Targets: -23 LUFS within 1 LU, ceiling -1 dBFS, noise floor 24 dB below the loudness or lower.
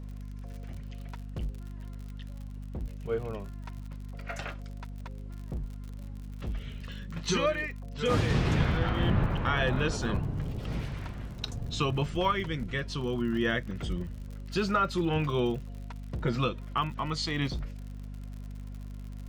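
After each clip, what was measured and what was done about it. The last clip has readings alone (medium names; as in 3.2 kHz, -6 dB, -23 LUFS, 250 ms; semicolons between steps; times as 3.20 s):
tick rate 58 per s; hum 50 Hz; highest harmonic 250 Hz; hum level -38 dBFS; loudness -31.5 LUFS; peak level -13.5 dBFS; loudness target -23.0 LUFS
-> de-click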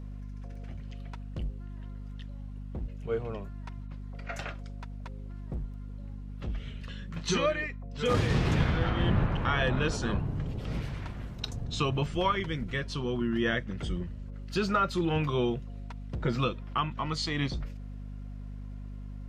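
tick rate 0.16 per s; hum 50 Hz; highest harmonic 250 Hz; hum level -38 dBFS
-> hum notches 50/100/150/200/250 Hz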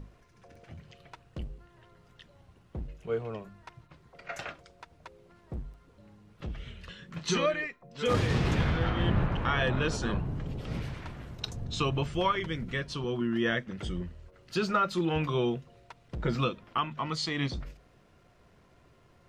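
hum not found; loudness -31.5 LUFS; peak level -13.5 dBFS; loudness target -23.0 LUFS
-> trim +8.5 dB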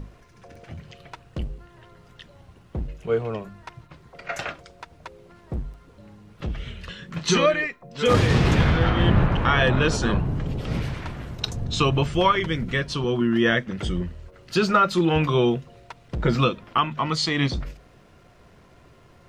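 loudness -23.0 LUFS; peak level -5.0 dBFS; noise floor -53 dBFS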